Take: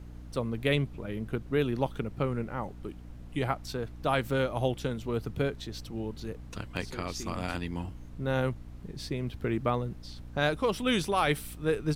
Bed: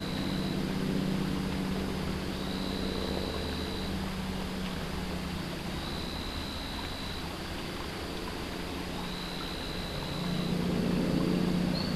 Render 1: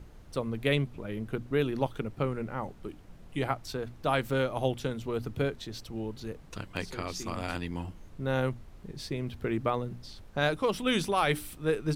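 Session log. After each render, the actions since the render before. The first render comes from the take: hum notches 60/120/180/240/300 Hz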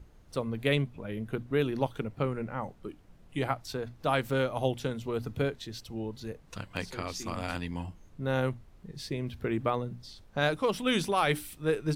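noise print and reduce 6 dB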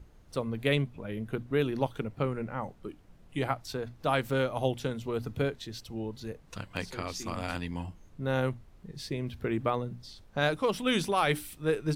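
no audible change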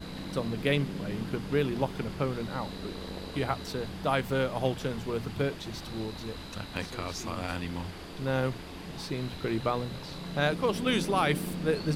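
add bed -6.5 dB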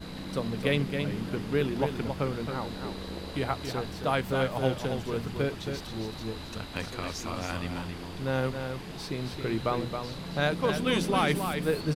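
delay 271 ms -6.5 dB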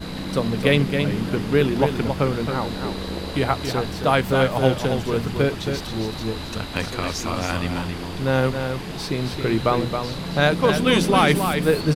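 trim +9 dB

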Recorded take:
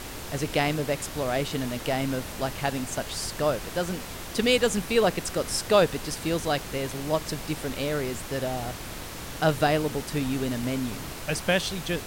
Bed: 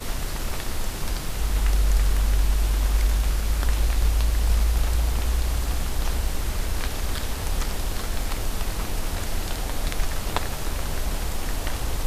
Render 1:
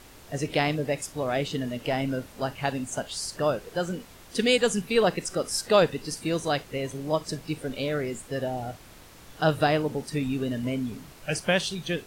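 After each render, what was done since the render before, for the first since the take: noise print and reduce 12 dB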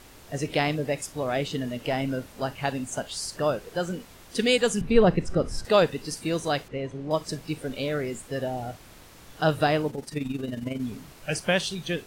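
4.81–5.65 s: RIAA curve playback; 6.68–7.11 s: tape spacing loss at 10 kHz 21 dB; 9.90–10.80 s: AM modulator 22 Hz, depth 50%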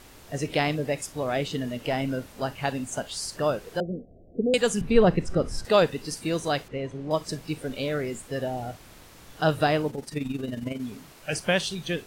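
3.80–4.54 s: steep low-pass 710 Hz 96 dB/octave; 10.72–11.33 s: bass shelf 160 Hz -8 dB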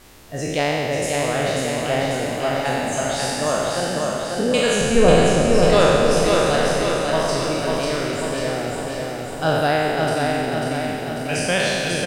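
spectral sustain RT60 2.27 s; on a send: feedback delay 544 ms, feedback 60%, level -3.5 dB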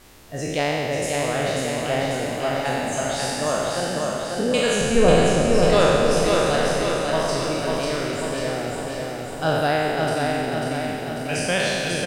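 trim -2 dB

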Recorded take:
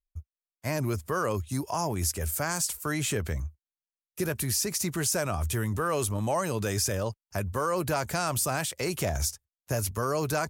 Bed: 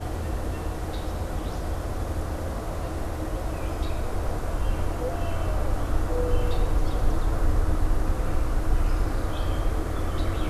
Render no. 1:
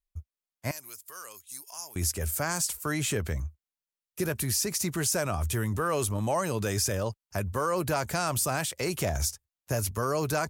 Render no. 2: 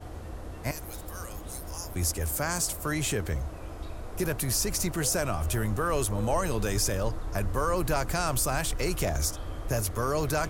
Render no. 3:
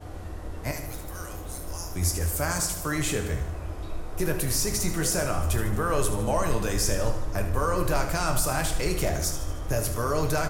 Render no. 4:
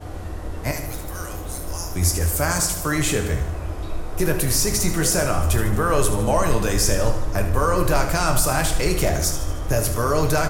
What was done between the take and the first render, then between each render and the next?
0.71–1.96 s: differentiator
add bed -10.5 dB
feedback delay 76 ms, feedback 57%, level -11.5 dB; simulated room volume 97 m³, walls mixed, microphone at 0.47 m
trim +6 dB

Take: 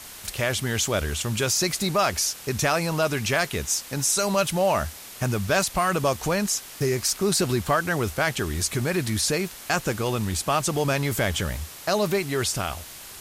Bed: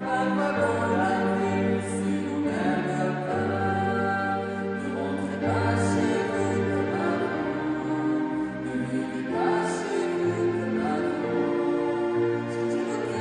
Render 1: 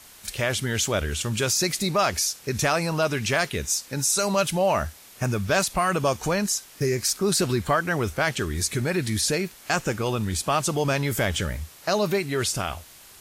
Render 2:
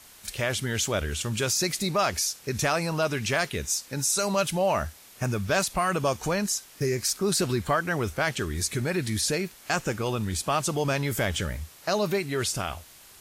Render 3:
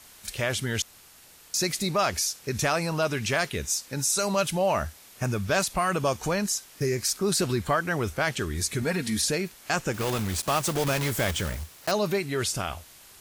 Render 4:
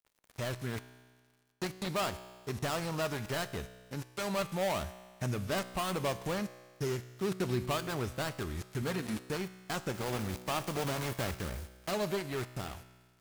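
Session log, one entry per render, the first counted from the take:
noise print and reduce 7 dB
trim -2.5 dB
0.82–1.54 s: room tone; 8.82–9.25 s: comb 4.3 ms; 9.94–11.93 s: block-companded coder 3-bit
dead-time distortion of 0.22 ms; feedback comb 62 Hz, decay 1.6 s, harmonics all, mix 60%

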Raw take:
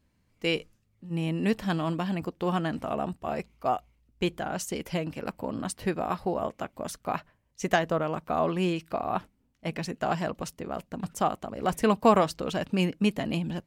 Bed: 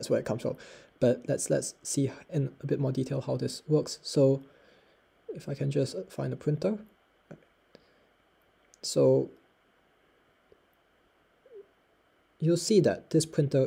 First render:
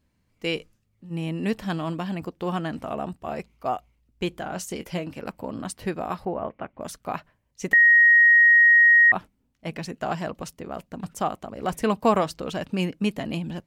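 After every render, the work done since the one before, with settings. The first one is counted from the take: 4.29–5.19 s: doubling 22 ms -12 dB; 6.25–6.81 s: low-pass 2.6 kHz 24 dB/octave; 7.73–9.12 s: bleep 1.88 kHz -11.5 dBFS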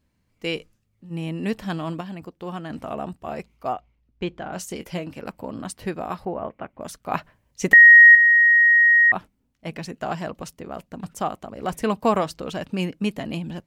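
2.01–2.70 s: gain -5 dB; 3.73–4.53 s: distance through air 150 m; 7.12–8.15 s: gain +6.5 dB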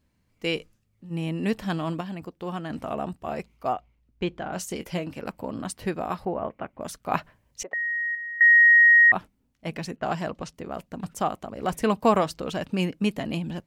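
7.63–8.41 s: ladder band-pass 700 Hz, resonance 50%; 9.96–10.54 s: level-controlled noise filter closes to 1.7 kHz, open at -25 dBFS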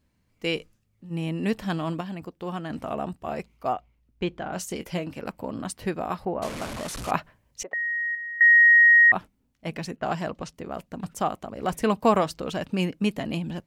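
6.42–7.11 s: one-bit delta coder 64 kbps, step -28.5 dBFS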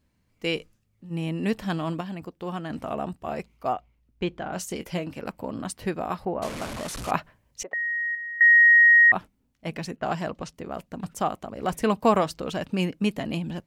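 no audible change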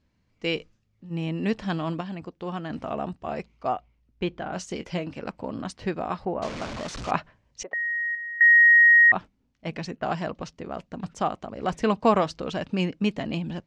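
low-pass 6.5 kHz 24 dB/octave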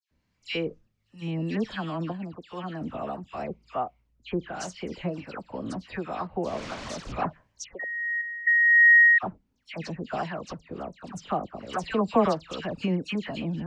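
phase dispersion lows, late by 113 ms, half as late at 2.1 kHz; harmonic tremolo 1.4 Hz, depth 50%, crossover 790 Hz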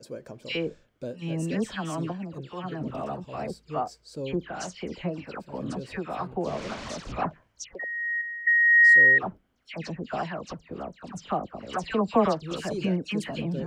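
add bed -11.5 dB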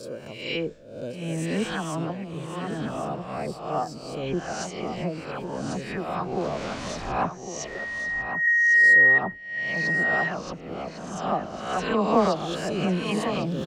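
reverse spectral sustain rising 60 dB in 0.69 s; on a send: delay 1103 ms -9 dB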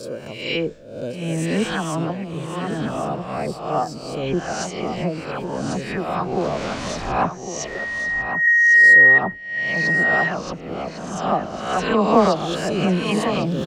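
trim +5.5 dB

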